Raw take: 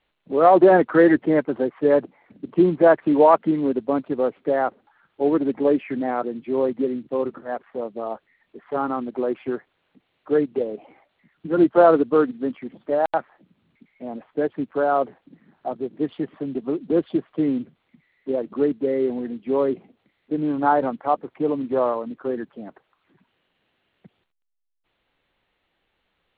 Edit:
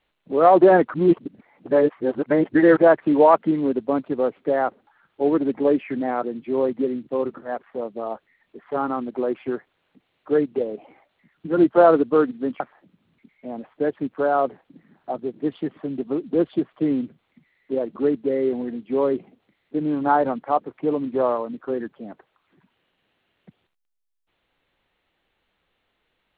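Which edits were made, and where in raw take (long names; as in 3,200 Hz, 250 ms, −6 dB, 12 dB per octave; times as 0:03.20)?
0:00.94–0:02.77: reverse
0:12.60–0:13.17: remove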